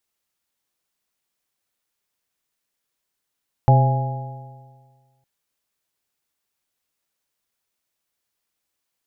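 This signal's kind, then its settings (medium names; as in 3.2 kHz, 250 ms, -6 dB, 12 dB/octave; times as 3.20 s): stretched partials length 1.56 s, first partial 129 Hz, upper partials -18/-18/-13/-12/-6 dB, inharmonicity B 0.0038, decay 1.64 s, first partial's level -9.5 dB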